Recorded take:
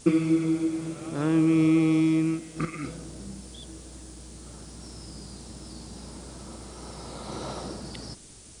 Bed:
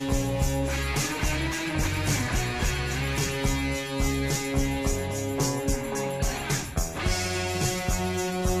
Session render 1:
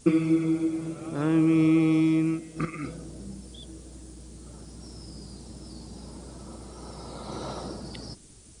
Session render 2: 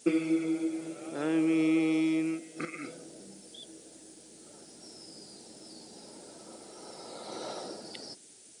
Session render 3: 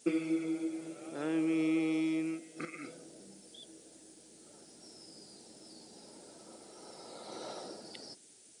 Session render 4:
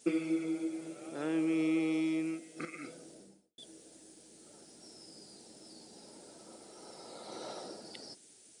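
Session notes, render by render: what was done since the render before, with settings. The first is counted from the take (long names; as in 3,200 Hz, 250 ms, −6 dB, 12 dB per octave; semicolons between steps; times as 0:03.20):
broadband denoise 6 dB, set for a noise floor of −48 dBFS
high-pass filter 390 Hz 12 dB per octave; parametric band 1,100 Hz −11 dB 0.4 octaves
level −4.5 dB
0:03.10–0:03.58: fade out and dull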